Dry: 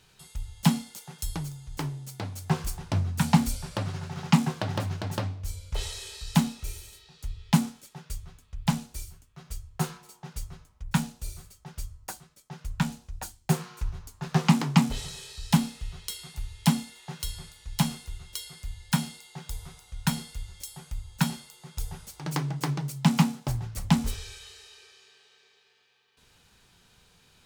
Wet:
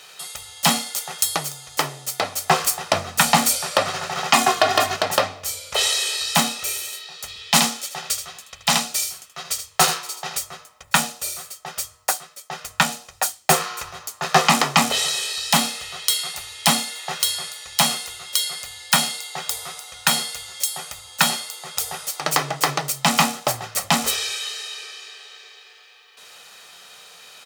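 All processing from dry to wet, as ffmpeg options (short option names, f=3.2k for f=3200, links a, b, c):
-filter_complex "[0:a]asettb=1/sr,asplit=3[a][b][c];[a]atrim=end=4.334[d];[b]atrim=start=4.33:end=4.96,asetpts=PTS-STARTPTS,afade=t=in:d=0.004:c=qsin,afade=t=out:st=0.626:d=0.004:c=qsin,aecho=1:1:2.8:0.86,atrim=end_sample=27783,aeval=exprs='val(0)+0.0126*(sin(2*PI*50*n/s)+sin(2*PI*2*50*n/s)/2+sin(2*PI*3*50*n/s)/3+sin(2*PI*4*50*n/s)/4+sin(2*PI*5*50*n/s)/5)':c=same[e];[c]atrim=start=4.956[f];[d][e]acrossfade=d=0.004:c1=hsin:c2=qsin[g];[g][f]acrossfade=d=0.004:c1=qsin:c2=hsin,asettb=1/sr,asplit=3[h][i][j];[h]atrim=end=7.284[k];[i]atrim=start=7.28:end=10.37,asetpts=PTS-STARTPTS,afade=t=in:d=0.004:c=qsin,afade=t=out:st=3.086:d=0.004:c=qsin,equalizer=f=4.3k:w=0.65:g=5.5,aecho=1:1:78:0.335,atrim=end_sample=136269[l];[j]atrim=start=10.366[m];[k][l]acrossfade=d=0.004:c1=hsin:c2=qsin[n];[n][m]acrossfade=d=0.004:c1=qsin:c2=hsin,highpass=520,aecho=1:1:1.6:0.4,alimiter=level_in=18dB:limit=-1dB:release=50:level=0:latency=1,volume=-1dB"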